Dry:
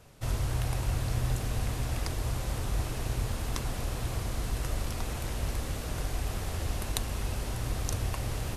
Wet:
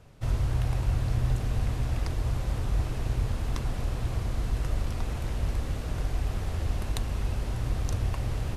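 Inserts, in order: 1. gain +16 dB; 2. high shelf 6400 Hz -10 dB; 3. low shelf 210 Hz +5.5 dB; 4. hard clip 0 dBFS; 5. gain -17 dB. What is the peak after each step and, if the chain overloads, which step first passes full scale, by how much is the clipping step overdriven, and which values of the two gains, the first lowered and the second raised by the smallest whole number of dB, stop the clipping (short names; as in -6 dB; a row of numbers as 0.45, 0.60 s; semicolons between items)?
+5.5, +2.0, +3.0, 0.0, -17.0 dBFS; step 1, 3.0 dB; step 1 +13 dB, step 5 -14 dB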